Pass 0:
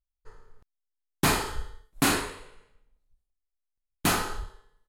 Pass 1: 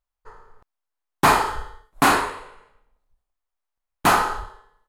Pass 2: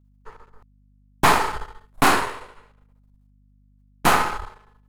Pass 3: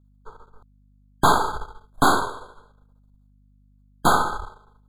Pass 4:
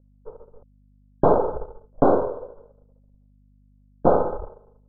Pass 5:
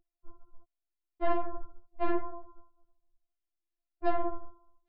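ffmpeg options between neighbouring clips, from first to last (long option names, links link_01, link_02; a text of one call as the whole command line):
ffmpeg -i in.wav -af "equalizer=frequency=960:width_type=o:width=2:gain=13.5" out.wav
ffmpeg -i in.wav -af "aeval=exprs='if(lt(val(0),0),0.251*val(0),val(0))':channel_layout=same,aeval=exprs='val(0)+0.00112*(sin(2*PI*50*n/s)+sin(2*PI*2*50*n/s)/2+sin(2*PI*3*50*n/s)/3+sin(2*PI*4*50*n/s)/4+sin(2*PI*5*50*n/s)/5)':channel_layout=same,volume=3dB" out.wav
ffmpeg -i in.wav -af "afftfilt=real='re*eq(mod(floor(b*sr/1024/1600),2),0)':imag='im*eq(mod(floor(b*sr/1024/1600),2),0)':win_size=1024:overlap=0.75" out.wav
ffmpeg -i in.wav -af "lowpass=frequency=540:width_type=q:width=4.9" out.wav
ffmpeg -i in.wav -af "aresample=11025,asoftclip=type=tanh:threshold=-16.5dB,aresample=44100,afftfilt=real='re*4*eq(mod(b,16),0)':imag='im*4*eq(mod(b,16),0)':win_size=2048:overlap=0.75,volume=-5dB" out.wav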